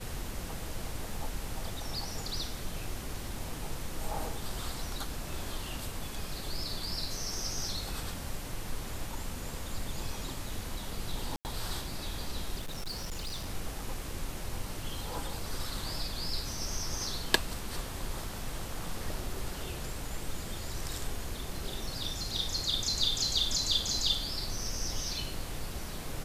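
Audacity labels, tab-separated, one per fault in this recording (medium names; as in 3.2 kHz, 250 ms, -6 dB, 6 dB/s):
11.360000	11.450000	dropout 89 ms
12.590000	13.500000	clipped -33 dBFS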